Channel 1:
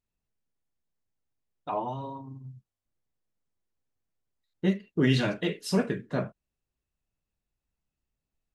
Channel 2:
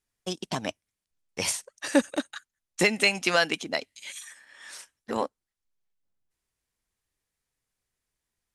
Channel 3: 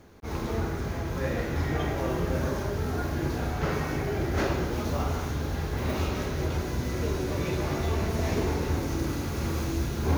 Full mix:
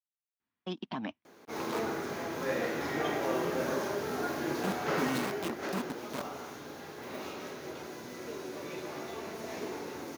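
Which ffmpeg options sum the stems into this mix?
-filter_complex "[0:a]bandreject=f=1.8k:w=6.9,acrusher=bits=3:mix=0:aa=0.000001,volume=-6dB,asplit=2[a][b];[1:a]lowpass=f=3.6k:w=0.5412,lowpass=f=3.6k:w=1.3066,adelay=400,volume=-4.5dB[c];[2:a]highpass=280,adelay=1250,afade=t=out:st=5.05:d=0.5:silence=0.398107[d];[b]apad=whole_len=394510[e];[c][e]sidechaingate=range=-33dB:threshold=-33dB:ratio=16:detection=peak[f];[a][f]amix=inputs=2:normalize=0,equalizer=f=125:t=o:w=1:g=-4,equalizer=f=250:t=o:w=1:g=10,equalizer=f=500:t=o:w=1:g=-6,equalizer=f=1k:t=o:w=1:g=7,alimiter=level_in=3dB:limit=-24dB:level=0:latency=1:release=22,volume=-3dB,volume=0dB[g];[d][g]amix=inputs=2:normalize=0,highpass=91"

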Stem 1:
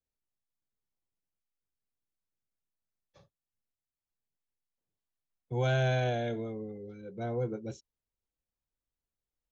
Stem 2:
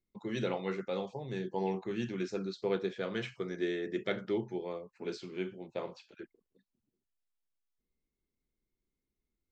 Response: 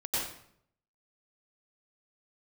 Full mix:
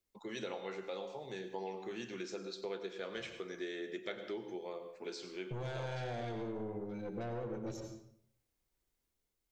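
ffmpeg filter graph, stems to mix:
-filter_complex "[0:a]alimiter=level_in=5dB:limit=-24dB:level=0:latency=1:release=278,volume=-5dB,dynaudnorm=f=110:g=9:m=4dB,aeval=exprs='(tanh(56.2*val(0)+0.5)-tanh(0.5))/56.2':c=same,volume=2dB,asplit=2[a][b];[b]volume=-10.5dB[c];[1:a]bass=f=250:g=-13,treble=f=4k:g=6,volume=-2dB,asplit=2[d][e];[e]volume=-16dB[f];[2:a]atrim=start_sample=2205[g];[c][f]amix=inputs=2:normalize=0[h];[h][g]afir=irnorm=-1:irlink=0[i];[a][d][i]amix=inputs=3:normalize=0,acompressor=threshold=-40dB:ratio=2.5"

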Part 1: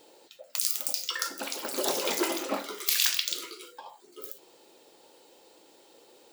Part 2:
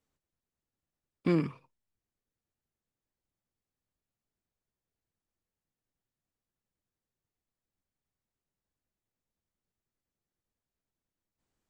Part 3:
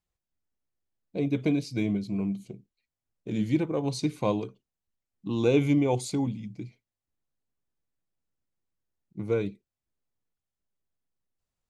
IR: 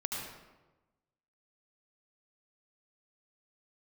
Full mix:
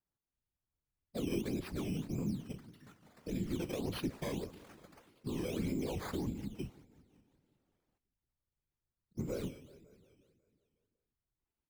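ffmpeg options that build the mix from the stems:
-filter_complex "[0:a]tremolo=f=230:d=0.519,adelay=1650,volume=-15dB[a];[1:a]asplit=3[b][c][d];[b]bandpass=f=300:t=q:w=8,volume=0dB[e];[c]bandpass=f=870:t=q:w=8,volume=-6dB[f];[d]bandpass=f=2.24k:t=q:w=8,volume=-9dB[g];[e][f][g]amix=inputs=3:normalize=0,aecho=1:1:5.8:0.56,volume=1.5dB[h];[2:a]alimiter=limit=-21dB:level=0:latency=1:release=15,volume=2dB,asplit=3[i][j][k];[j]volume=-21.5dB[l];[k]apad=whole_len=351848[m];[a][m]sidechaincompress=threshold=-45dB:ratio=5:attack=16:release=438[n];[n][i]amix=inputs=2:normalize=0,agate=range=-6dB:threshold=-50dB:ratio=16:detection=peak,acompressor=threshold=-27dB:ratio=6,volume=0dB[o];[l]aecho=0:1:182|364|546|728|910|1092|1274|1456|1638:1|0.59|0.348|0.205|0.121|0.0715|0.0422|0.0249|0.0147[p];[h][o][p]amix=inputs=3:normalize=0,acrusher=samples=11:mix=1:aa=0.000001:lfo=1:lforange=11:lforate=1.7,afftfilt=real='hypot(re,im)*cos(2*PI*random(0))':imag='hypot(re,im)*sin(2*PI*random(1))':win_size=512:overlap=0.75,acrossover=split=300[q][r];[r]acompressor=threshold=-41dB:ratio=1.5[s];[q][s]amix=inputs=2:normalize=0"

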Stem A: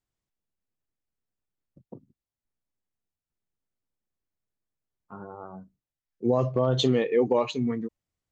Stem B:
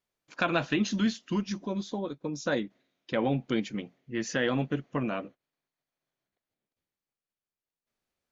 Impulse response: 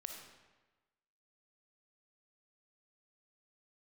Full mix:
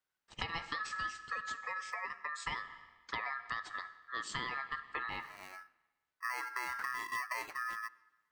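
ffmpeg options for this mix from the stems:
-filter_complex "[0:a]equalizer=f=6k:t=o:w=0.69:g=-9,acrusher=samples=12:mix=1:aa=0.000001,volume=-5.5dB,asplit=2[a][b];[b]volume=-16dB[c];[1:a]bandreject=f=50:t=h:w=6,bandreject=f=100:t=h:w=6,bandreject=f=150:t=h:w=6,bandreject=f=200:t=h:w=6,volume=-4dB,asplit=3[d][e][f];[e]volume=-6.5dB[g];[f]apad=whole_len=366487[h];[a][h]sidechaincompress=threshold=-44dB:ratio=8:attack=23:release=363[i];[2:a]atrim=start_sample=2205[j];[c][g]amix=inputs=2:normalize=0[k];[k][j]afir=irnorm=-1:irlink=0[l];[i][d][l]amix=inputs=3:normalize=0,aeval=exprs='val(0)*sin(2*PI*1500*n/s)':c=same,acompressor=threshold=-35dB:ratio=6"

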